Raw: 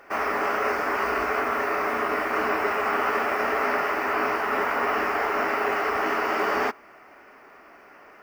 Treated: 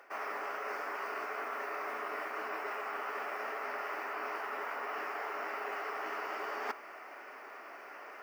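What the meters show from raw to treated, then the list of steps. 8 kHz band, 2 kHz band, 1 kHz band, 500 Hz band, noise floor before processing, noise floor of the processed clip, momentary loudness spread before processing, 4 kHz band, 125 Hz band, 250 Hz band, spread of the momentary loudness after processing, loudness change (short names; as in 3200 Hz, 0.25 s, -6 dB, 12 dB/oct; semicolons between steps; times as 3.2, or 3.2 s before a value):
-13.0 dB, -13.0 dB, -13.5 dB, -15.0 dB, -50 dBFS, -50 dBFS, 1 LU, -13.0 dB, under -25 dB, -19.5 dB, 10 LU, -14.5 dB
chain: HPF 410 Hz 12 dB/oct; reverse; compressor 16:1, threshold -37 dBFS, peak gain reduction 16.5 dB; reverse; gain +1.5 dB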